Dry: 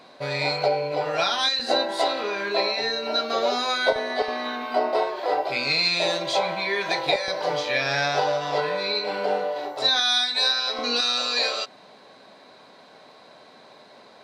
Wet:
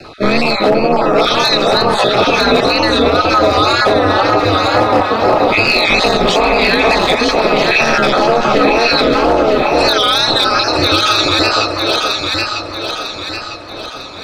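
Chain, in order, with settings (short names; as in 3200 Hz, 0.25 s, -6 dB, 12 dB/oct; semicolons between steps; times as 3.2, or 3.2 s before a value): random spectral dropouts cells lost 22%; HPF 57 Hz; low shelf 340 Hz +11 dB; ring modulator 110 Hz; wow and flutter 110 cents; overloaded stage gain 16.5 dB; small resonant body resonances 1300/2600 Hz, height 13 dB, ringing for 45 ms; frequency shift -33 Hz; echo with dull and thin repeats by turns 0.475 s, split 1200 Hz, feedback 68%, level -3 dB; maximiser +16.5 dB; gain -1 dB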